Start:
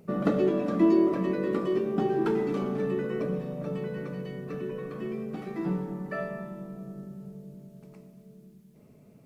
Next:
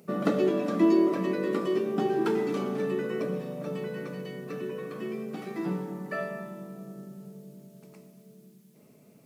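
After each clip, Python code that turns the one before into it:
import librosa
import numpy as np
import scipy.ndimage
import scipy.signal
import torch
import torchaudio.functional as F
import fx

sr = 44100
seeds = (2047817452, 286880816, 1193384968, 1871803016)

y = scipy.signal.sosfilt(scipy.signal.butter(2, 170.0, 'highpass', fs=sr, output='sos'), x)
y = fx.high_shelf(y, sr, hz=3000.0, db=8.0)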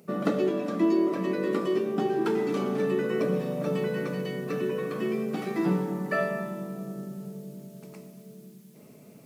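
y = fx.rider(x, sr, range_db=4, speed_s=0.5)
y = y * 10.0 ** (2.0 / 20.0)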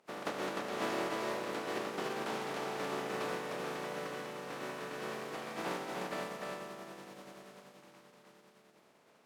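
y = fx.spec_flatten(x, sr, power=0.24)
y = fx.bandpass_q(y, sr, hz=600.0, q=0.62)
y = y + 10.0 ** (-3.0 / 20.0) * np.pad(y, (int(303 * sr / 1000.0), 0))[:len(y)]
y = y * 10.0 ** (-7.0 / 20.0)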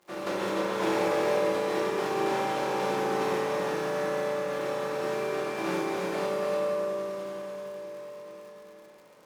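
y = fx.rev_fdn(x, sr, rt60_s=2.4, lf_ratio=0.8, hf_ratio=0.45, size_ms=17.0, drr_db=-7.5)
y = fx.dmg_crackle(y, sr, seeds[0], per_s=140.0, level_db=-47.0)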